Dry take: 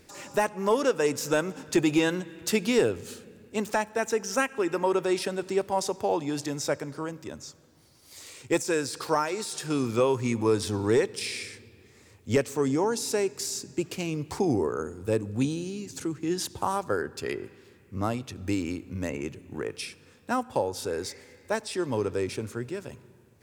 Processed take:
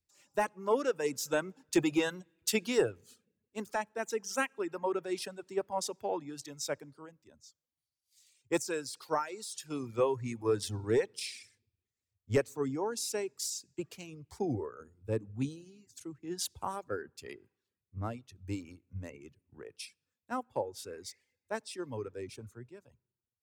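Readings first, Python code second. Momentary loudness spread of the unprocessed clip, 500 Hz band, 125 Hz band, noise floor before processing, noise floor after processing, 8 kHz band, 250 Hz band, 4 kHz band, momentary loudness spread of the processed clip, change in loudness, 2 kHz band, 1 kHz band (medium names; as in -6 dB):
13 LU, -7.0 dB, -8.0 dB, -57 dBFS, under -85 dBFS, -5.5 dB, -9.0 dB, -6.0 dB, 17 LU, -6.5 dB, -7.0 dB, -7.5 dB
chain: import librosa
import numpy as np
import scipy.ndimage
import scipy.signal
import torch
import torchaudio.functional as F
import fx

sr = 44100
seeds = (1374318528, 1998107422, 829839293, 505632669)

y = fx.dereverb_blind(x, sr, rt60_s=0.82)
y = fx.band_widen(y, sr, depth_pct=100)
y = F.gain(torch.from_numpy(y), -8.5).numpy()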